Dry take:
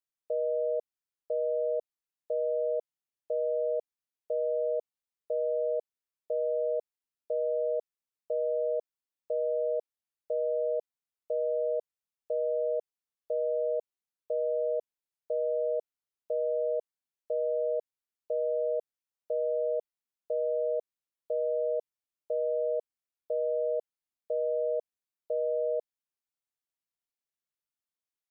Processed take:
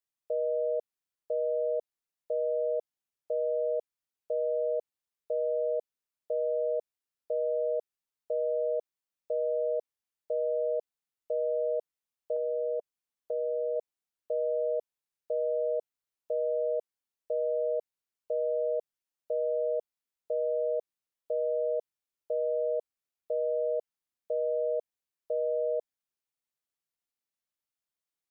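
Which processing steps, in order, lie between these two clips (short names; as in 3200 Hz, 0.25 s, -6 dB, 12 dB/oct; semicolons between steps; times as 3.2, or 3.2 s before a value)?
12.36–13.76 dynamic EQ 590 Hz, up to -5 dB, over -47 dBFS, Q 7.9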